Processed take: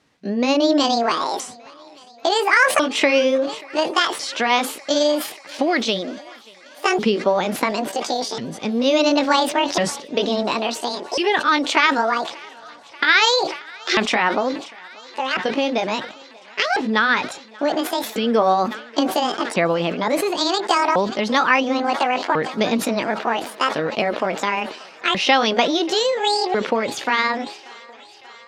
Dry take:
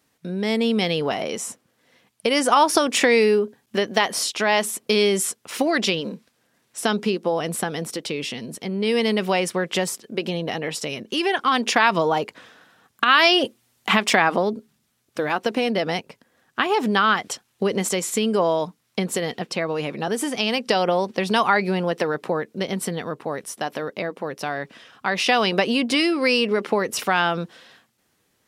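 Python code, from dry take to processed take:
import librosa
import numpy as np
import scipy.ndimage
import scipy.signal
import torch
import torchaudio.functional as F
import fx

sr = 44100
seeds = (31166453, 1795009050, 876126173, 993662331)

y = fx.pitch_ramps(x, sr, semitones=10.5, every_ms=1397)
y = scipy.signal.sosfilt(scipy.signal.butter(2, 5100.0, 'lowpass', fs=sr, output='sos'), y)
y = fx.rider(y, sr, range_db=5, speed_s=2.0)
y = fx.echo_thinned(y, sr, ms=585, feedback_pct=82, hz=350.0, wet_db=-23.5)
y = fx.sustainer(y, sr, db_per_s=97.0)
y = F.gain(torch.from_numpy(y), 3.0).numpy()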